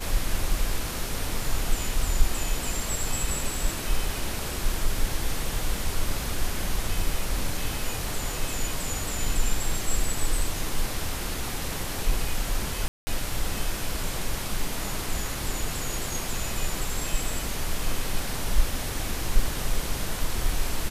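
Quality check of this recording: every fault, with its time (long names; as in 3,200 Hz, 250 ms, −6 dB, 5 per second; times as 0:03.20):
0:12.88–0:13.07: drop-out 190 ms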